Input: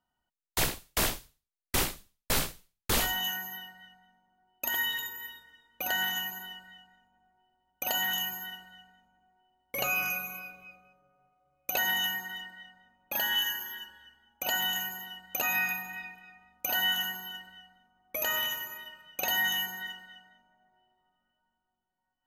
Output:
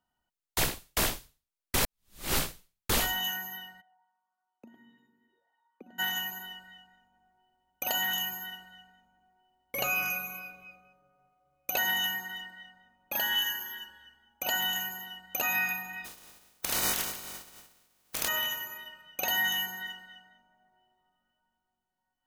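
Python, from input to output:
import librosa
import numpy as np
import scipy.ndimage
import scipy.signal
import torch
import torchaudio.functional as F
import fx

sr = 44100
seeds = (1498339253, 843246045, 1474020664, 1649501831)

y = fx.auto_wah(x, sr, base_hz=230.0, top_hz=1200.0, q=5.9, full_db=-36.5, direction='down', at=(3.8, 5.98), fade=0.02)
y = fx.spec_flatten(y, sr, power=0.14, at=(16.04, 18.27), fade=0.02)
y = fx.edit(y, sr, fx.reverse_span(start_s=1.8, length_s=0.55), tone=tone)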